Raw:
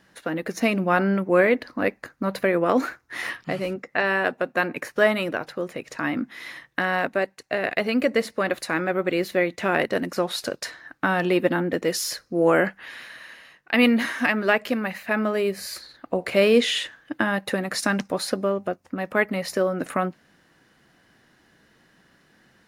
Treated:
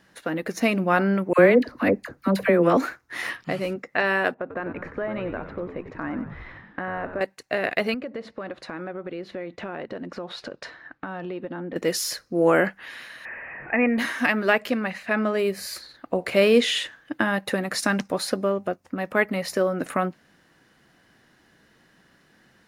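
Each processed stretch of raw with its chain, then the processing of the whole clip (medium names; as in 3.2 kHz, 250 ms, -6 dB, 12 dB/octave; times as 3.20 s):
1.33–2.77 s: bass shelf 440 Hz +6.5 dB + phase dispersion lows, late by 59 ms, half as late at 880 Hz
4.34–7.21 s: low-pass 1.5 kHz + compression 4:1, threshold -26 dBFS + frequency-shifting echo 94 ms, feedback 64%, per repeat -88 Hz, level -10 dB
7.94–11.76 s: low-pass 3 kHz + dynamic bell 2.1 kHz, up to -6 dB, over -41 dBFS, Q 1.6 + compression 4:1, threshold -31 dBFS
13.25–13.98 s: jump at every zero crossing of -30 dBFS + rippled Chebyshev low-pass 2.6 kHz, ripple 6 dB
14.70–15.39 s: low-pass 8.4 kHz + band-stop 880 Hz, Q 29
whole clip: none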